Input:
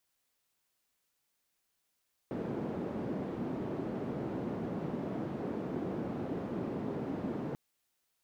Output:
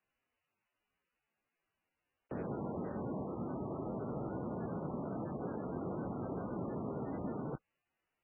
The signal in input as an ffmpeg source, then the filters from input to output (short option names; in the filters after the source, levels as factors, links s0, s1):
-f lavfi -i "anoisesrc=c=white:d=5.24:r=44100:seed=1,highpass=f=190,lowpass=f=280,volume=-9.8dB"
-filter_complex "[0:a]acrossover=split=210|430|2500[s0][s1][s2][s3];[s1]alimiter=level_in=7.94:limit=0.0631:level=0:latency=1:release=255,volume=0.126[s4];[s0][s4][s2][s3]amix=inputs=4:normalize=0" -ar 16000 -c:a libmp3lame -b:a 8k